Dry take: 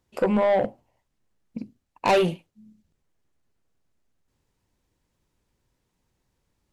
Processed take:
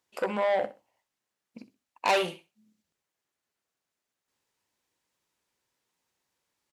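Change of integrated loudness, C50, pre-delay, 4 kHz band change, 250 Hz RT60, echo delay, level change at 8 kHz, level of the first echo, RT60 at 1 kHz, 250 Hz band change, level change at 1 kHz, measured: −5.5 dB, no reverb audible, no reverb audible, 0.0 dB, no reverb audible, 63 ms, 0.0 dB, −16.0 dB, no reverb audible, −12.5 dB, −3.5 dB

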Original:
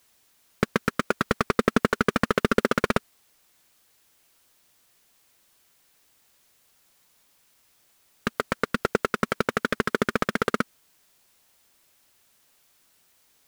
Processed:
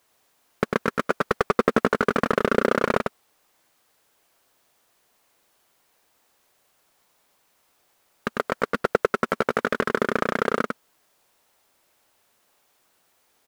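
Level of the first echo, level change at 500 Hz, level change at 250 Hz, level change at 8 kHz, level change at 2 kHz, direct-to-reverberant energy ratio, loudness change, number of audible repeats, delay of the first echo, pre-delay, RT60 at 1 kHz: −4.5 dB, +3.5 dB, −0.5 dB, −4.0 dB, +0.5 dB, no reverb audible, +1.5 dB, 1, 99 ms, no reverb audible, no reverb audible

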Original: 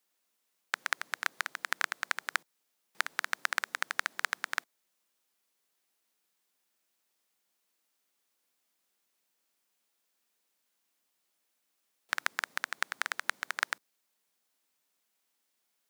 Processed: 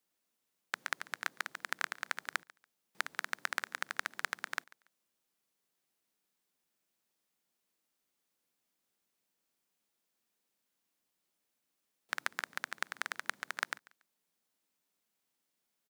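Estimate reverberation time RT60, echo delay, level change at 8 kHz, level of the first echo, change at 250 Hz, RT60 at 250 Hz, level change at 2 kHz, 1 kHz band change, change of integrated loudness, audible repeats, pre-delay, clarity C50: no reverb audible, 142 ms, −5.0 dB, −23.0 dB, +0.5 dB, no reverb audible, −4.5 dB, −4.5 dB, −4.5 dB, 1, no reverb audible, no reverb audible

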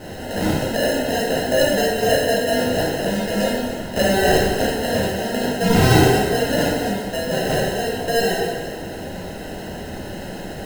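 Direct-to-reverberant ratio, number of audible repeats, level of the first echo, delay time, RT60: −6.5 dB, no echo audible, no echo audible, no echo audible, 1.5 s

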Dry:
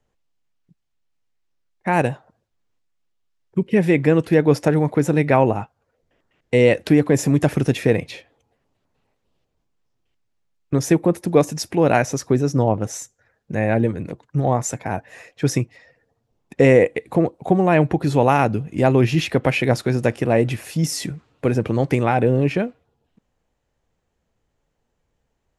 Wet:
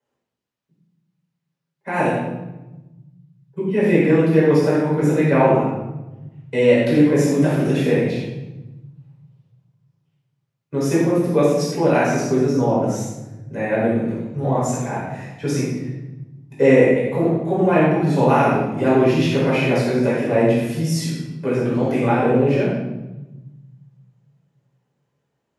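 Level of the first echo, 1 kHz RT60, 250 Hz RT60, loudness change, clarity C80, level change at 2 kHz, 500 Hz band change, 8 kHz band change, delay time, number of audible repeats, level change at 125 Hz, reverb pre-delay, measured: no echo audible, 0.95 s, 1.9 s, +0.5 dB, 3.0 dB, 0.0 dB, +1.5 dB, −3.0 dB, no echo audible, no echo audible, −1.0 dB, 7 ms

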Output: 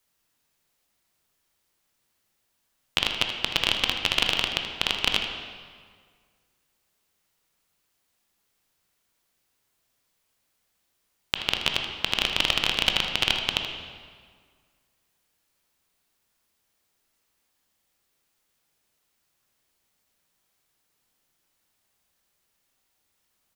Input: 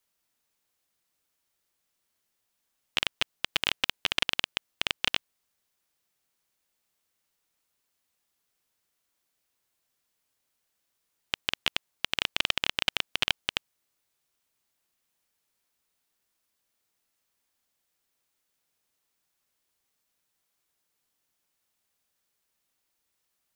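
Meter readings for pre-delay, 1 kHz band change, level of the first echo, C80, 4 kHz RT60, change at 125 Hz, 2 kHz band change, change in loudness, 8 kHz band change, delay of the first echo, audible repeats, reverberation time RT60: 16 ms, +5.5 dB, −12.0 dB, 6.0 dB, 1.4 s, +8.5 dB, +3.5 dB, +4.5 dB, +4.5 dB, 79 ms, 1, 1.8 s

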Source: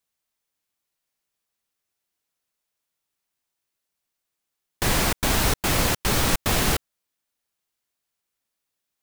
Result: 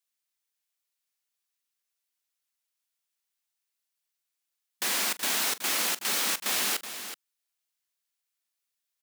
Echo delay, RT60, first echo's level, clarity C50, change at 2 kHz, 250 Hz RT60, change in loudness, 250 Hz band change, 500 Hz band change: 42 ms, no reverb audible, −16.5 dB, no reverb audible, −4.5 dB, no reverb audible, −4.0 dB, −15.5 dB, −12.5 dB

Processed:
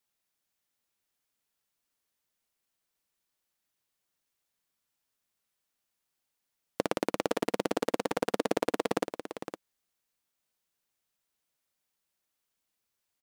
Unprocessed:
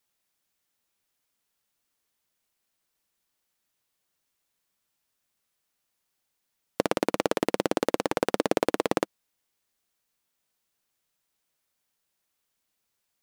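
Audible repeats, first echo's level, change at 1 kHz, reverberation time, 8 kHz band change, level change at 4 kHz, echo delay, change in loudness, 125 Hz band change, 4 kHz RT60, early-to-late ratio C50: 1, −10.0 dB, −4.0 dB, no reverb audible, −4.0 dB, −4.0 dB, 510 ms, −4.5 dB, −4.5 dB, no reverb audible, no reverb audible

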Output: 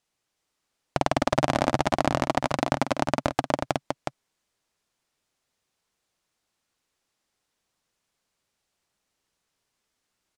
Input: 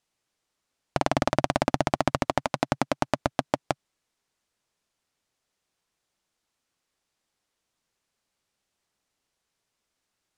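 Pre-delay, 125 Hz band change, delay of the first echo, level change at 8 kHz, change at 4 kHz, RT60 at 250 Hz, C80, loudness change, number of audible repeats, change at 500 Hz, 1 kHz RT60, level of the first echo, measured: no reverb audible, +1.5 dB, 50 ms, +1.5 dB, +1.5 dB, no reverb audible, no reverb audible, +1.5 dB, 2, +1.5 dB, no reverb audible, −10.5 dB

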